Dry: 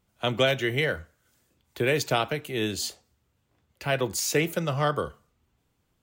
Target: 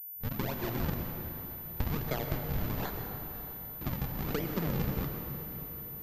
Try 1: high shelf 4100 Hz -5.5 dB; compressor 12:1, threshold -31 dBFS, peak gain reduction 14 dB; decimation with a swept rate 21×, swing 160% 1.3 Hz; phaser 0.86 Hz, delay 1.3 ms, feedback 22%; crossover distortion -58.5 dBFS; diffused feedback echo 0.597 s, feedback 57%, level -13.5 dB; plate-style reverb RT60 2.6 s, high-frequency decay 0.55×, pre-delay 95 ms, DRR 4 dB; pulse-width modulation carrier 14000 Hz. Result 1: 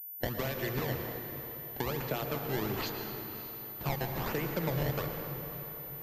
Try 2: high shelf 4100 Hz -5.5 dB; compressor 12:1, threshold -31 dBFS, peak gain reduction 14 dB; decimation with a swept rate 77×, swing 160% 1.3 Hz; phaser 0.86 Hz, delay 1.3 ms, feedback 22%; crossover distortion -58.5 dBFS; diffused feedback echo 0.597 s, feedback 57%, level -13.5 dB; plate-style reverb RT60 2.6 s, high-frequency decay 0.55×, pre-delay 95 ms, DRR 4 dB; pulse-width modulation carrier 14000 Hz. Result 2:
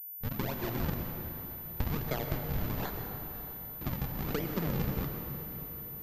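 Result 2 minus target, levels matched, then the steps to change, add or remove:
crossover distortion: distortion +7 dB
change: crossover distortion -67.5 dBFS

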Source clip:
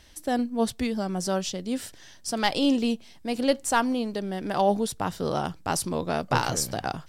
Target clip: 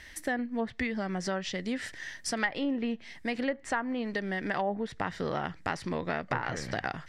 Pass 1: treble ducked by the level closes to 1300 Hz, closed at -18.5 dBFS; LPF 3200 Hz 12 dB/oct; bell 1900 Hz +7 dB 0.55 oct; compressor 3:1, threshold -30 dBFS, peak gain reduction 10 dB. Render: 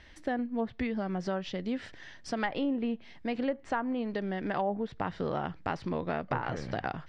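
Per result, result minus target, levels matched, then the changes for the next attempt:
2000 Hz band -5.0 dB; 4000 Hz band -4.5 dB
change: bell 1900 Hz +17 dB 0.55 oct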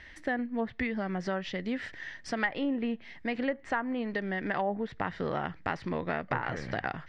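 4000 Hz band -4.0 dB
remove: LPF 3200 Hz 12 dB/oct

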